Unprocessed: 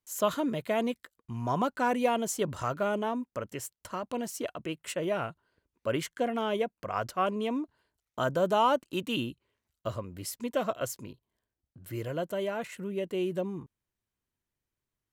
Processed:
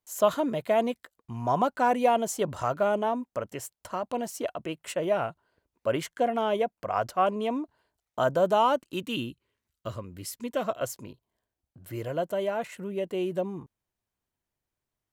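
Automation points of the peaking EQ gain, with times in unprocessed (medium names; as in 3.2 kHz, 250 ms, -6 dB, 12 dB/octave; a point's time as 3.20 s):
peaking EQ 720 Hz 0.93 oct
8.36 s +7 dB
9.06 s -3.5 dB
10.35 s -3.5 dB
10.92 s +6 dB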